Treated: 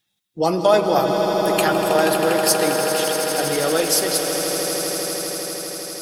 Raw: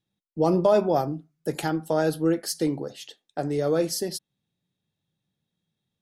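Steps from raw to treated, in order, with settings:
spectral magnitudes quantised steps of 15 dB
tilt shelving filter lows −9.5 dB, about 800 Hz
echo that builds up and dies away 80 ms, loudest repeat 8, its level −11 dB
on a send at −9.5 dB: convolution reverb RT60 4.1 s, pre-delay 95 ms
on the sum: dynamic equaliser 5,500 Hz, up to −6 dB, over −40 dBFS, Q 1.2
level +6.5 dB

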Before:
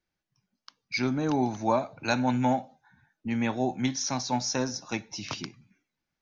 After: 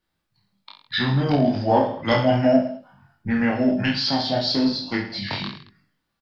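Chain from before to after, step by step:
gain on a spectral selection 0:04.53–0:04.92, 740–3,200 Hz −7 dB
formants moved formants −4 semitones
chorus effect 0.47 Hz, delay 18.5 ms, depth 2.8 ms
on a send: reverse bouncing-ball delay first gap 30 ms, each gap 1.2×, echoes 5
on the sum: level +9 dB

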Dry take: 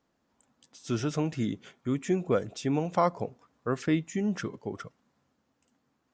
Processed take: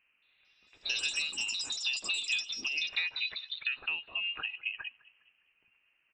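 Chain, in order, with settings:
parametric band 490 Hz +11 dB 0.46 octaves
voice inversion scrambler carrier 3,000 Hz
downward compressor 6 to 1, threshold −32 dBFS, peak gain reduction 17.5 dB
delay with pitch and tempo change per echo 224 ms, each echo +6 semitones, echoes 3
0:01.28–0:02.78: graphic EQ with 15 bands 250 Hz +7 dB, 630 Hz −4 dB, 1,600 Hz −4 dB
echo with shifted repeats 204 ms, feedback 45%, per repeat +44 Hz, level −23 dB

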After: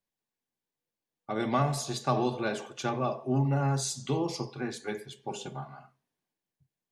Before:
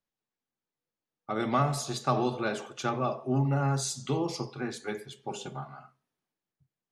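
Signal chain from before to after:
notch filter 1,300 Hz, Q 7

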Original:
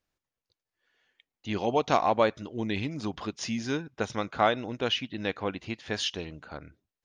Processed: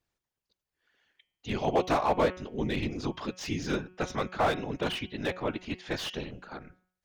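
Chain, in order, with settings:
random phases in short frames
hum removal 183.5 Hz, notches 18
slew-rate limiting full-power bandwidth 70 Hz

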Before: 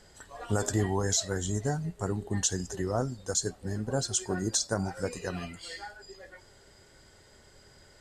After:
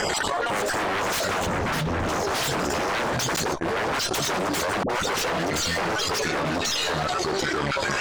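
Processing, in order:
time-frequency cells dropped at random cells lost 27%
delay with pitch and tempo change per echo 464 ms, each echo −2 semitones, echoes 2
dynamic equaliser 600 Hz, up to +4 dB, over −41 dBFS, Q 0.93
0:03.36–0:04.18: noise gate −30 dBFS, range −50 dB
wave folding −30.5 dBFS
harmonic generator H 6 −15 dB, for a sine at −30.5 dBFS
0:01.46–0:02.09: bass and treble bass +13 dB, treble −8 dB
mid-hump overdrive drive 24 dB, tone 2,100 Hz, clips at −17 dBFS
0:04.83–0:05.24: all-pass dispersion highs, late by 65 ms, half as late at 580 Hz
envelope flattener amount 100%
level −2 dB

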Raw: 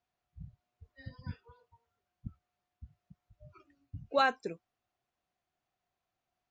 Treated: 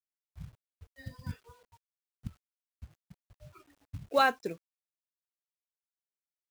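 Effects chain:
log-companded quantiser 6 bits
level +2.5 dB

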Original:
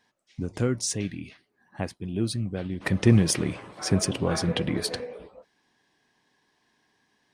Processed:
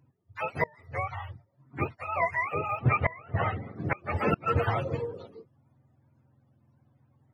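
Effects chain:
frequency axis turned over on the octave scale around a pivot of 480 Hz
0:00.66–0:01.11: downward compressor 6 to 1, threshold −31 dBFS, peak gain reduction 8 dB
0:02.79–0:03.76: low-pass filter 2,800 Hz 24 dB per octave
gate with flip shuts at −16 dBFS, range −27 dB
level +3.5 dB

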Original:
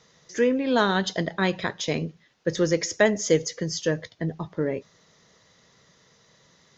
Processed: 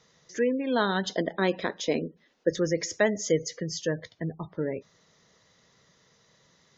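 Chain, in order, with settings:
gate on every frequency bin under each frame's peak −30 dB strong
0:01.10–0:02.51: octave-band graphic EQ 125/250/500 Hz −12/+7/+5 dB
level −4 dB

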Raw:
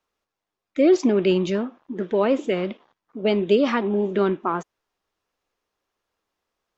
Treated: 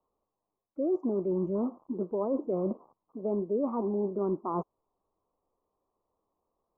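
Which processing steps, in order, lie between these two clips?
reversed playback
downward compressor 6 to 1, threshold −29 dBFS, peak gain reduction 15.5 dB
reversed playback
elliptic low-pass filter 1,100 Hz, stop band 40 dB
level +2 dB

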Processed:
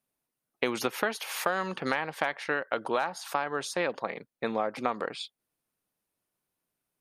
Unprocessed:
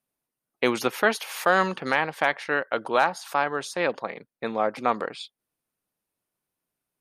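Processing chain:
downward compressor 10 to 1, threshold −24 dBFS, peak gain reduction 10.5 dB

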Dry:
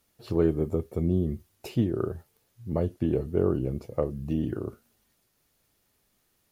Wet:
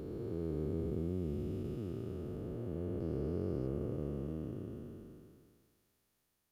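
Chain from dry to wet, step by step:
spectrum smeared in time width 1,050 ms
0:03.00–0:03.67: parametric band 4,900 Hz +11 dB 0.36 octaves
level −5.5 dB

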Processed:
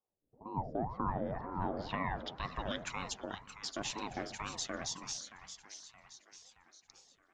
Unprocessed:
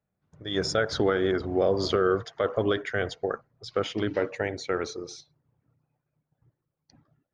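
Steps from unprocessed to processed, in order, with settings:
first-order pre-emphasis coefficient 0.8
in parallel at −3 dB: brickwall limiter −32.5 dBFS, peak gain reduction 9.5 dB
on the sum: low-pass filter sweep 400 Hz → 7,200 Hz, 0:00.67–0:02.87
echo with a time of its own for lows and highs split 600 Hz, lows 83 ms, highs 623 ms, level −10 dB
ring modulator whose carrier an LFO sweeps 400 Hz, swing 65%, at 2 Hz
level −1 dB

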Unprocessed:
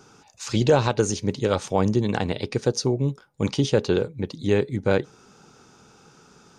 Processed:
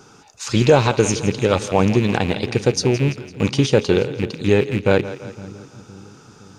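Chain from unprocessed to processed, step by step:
loose part that buzzes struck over −32 dBFS, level −24 dBFS
echo with a time of its own for lows and highs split 330 Hz, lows 513 ms, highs 168 ms, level −14.5 dB
level +5 dB

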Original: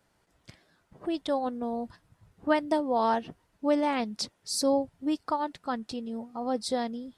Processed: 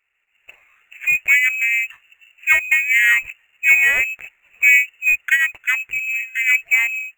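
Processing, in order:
automatic gain control gain up to 15 dB
voice inversion scrambler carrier 2,800 Hz
graphic EQ with 10 bands 125 Hz −4 dB, 250 Hz −10 dB, 1,000 Hz −7 dB, 2,000 Hz +7 dB
in parallel at −11 dB: decimation without filtering 9×
on the sum: level −6.5 dB

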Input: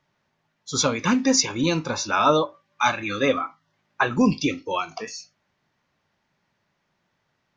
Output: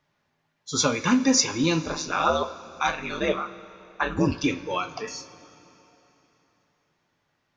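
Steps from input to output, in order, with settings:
0:01.85–0:04.44: ring modulation 76 Hz
coupled-rooms reverb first 0.24 s, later 3.4 s, from −18 dB, DRR 7 dB
level −1.5 dB

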